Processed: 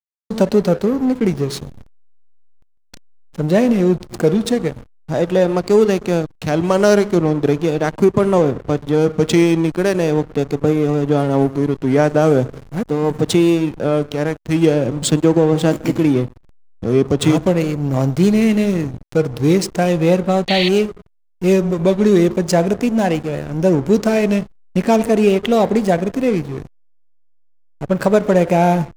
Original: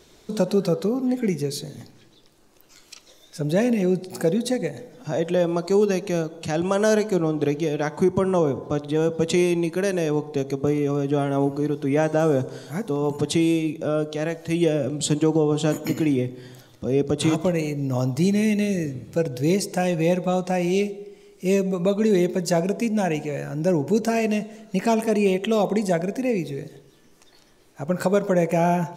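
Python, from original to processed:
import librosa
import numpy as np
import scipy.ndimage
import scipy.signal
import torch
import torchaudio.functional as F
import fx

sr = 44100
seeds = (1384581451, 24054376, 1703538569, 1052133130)

y = fx.vibrato(x, sr, rate_hz=0.4, depth_cents=76.0)
y = fx.backlash(y, sr, play_db=-27.0)
y = fx.spec_paint(y, sr, seeds[0], shape='noise', start_s=20.48, length_s=0.21, low_hz=1800.0, high_hz=4600.0, level_db=-27.0)
y = y * 10.0 ** (7.0 / 20.0)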